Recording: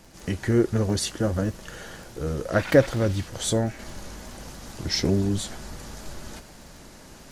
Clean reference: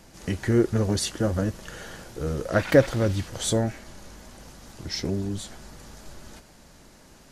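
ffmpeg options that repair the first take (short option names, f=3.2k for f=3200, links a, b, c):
-filter_complex "[0:a]adeclick=t=4,asplit=3[a][b][c];[a]afade=t=out:st=3.93:d=0.02[d];[b]highpass=f=140:w=0.5412,highpass=f=140:w=1.3066,afade=t=in:st=3.93:d=0.02,afade=t=out:st=4.05:d=0.02[e];[c]afade=t=in:st=4.05:d=0.02[f];[d][e][f]amix=inputs=3:normalize=0,asplit=3[g][h][i];[g]afade=t=out:st=5.69:d=0.02[j];[h]highpass=f=140:w=0.5412,highpass=f=140:w=1.3066,afade=t=in:st=5.69:d=0.02,afade=t=out:st=5.81:d=0.02[k];[i]afade=t=in:st=5.81:d=0.02[l];[j][k][l]amix=inputs=3:normalize=0,agate=range=-21dB:threshold=-38dB,asetnsamples=n=441:p=0,asendcmd='3.79 volume volume -5.5dB',volume=0dB"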